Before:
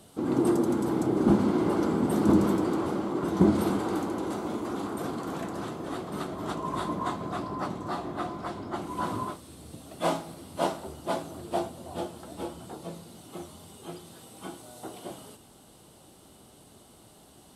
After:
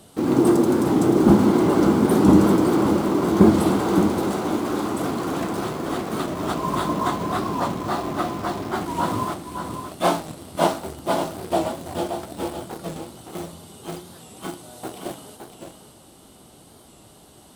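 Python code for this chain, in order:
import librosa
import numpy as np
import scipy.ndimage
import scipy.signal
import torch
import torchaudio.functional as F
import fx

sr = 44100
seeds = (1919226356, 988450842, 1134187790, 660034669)

p1 = fx.quant_dither(x, sr, seeds[0], bits=6, dither='none')
p2 = x + (p1 * librosa.db_to_amplitude(-8.0))
p3 = p2 + 10.0 ** (-7.5 / 20.0) * np.pad(p2, (int(567 * sr / 1000.0), 0))[:len(p2)]
p4 = fx.record_warp(p3, sr, rpm=45.0, depth_cents=100.0)
y = p4 * librosa.db_to_amplitude(4.5)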